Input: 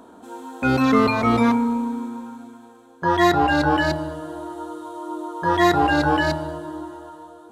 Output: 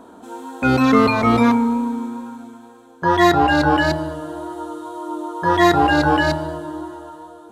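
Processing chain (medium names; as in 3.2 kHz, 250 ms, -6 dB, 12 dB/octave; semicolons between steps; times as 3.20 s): wow and flutter 16 cents; trim +3 dB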